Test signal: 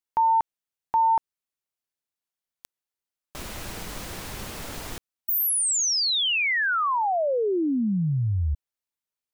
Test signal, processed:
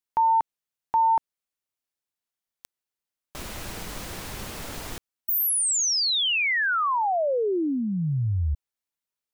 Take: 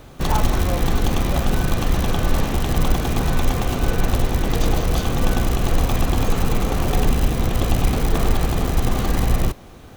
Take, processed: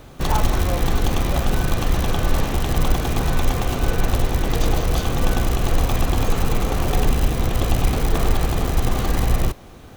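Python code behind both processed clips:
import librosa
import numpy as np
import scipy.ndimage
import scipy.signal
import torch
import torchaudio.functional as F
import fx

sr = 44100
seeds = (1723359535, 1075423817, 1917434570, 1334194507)

y = fx.dynamic_eq(x, sr, hz=210.0, q=1.7, threshold_db=-35.0, ratio=5.0, max_db=-3)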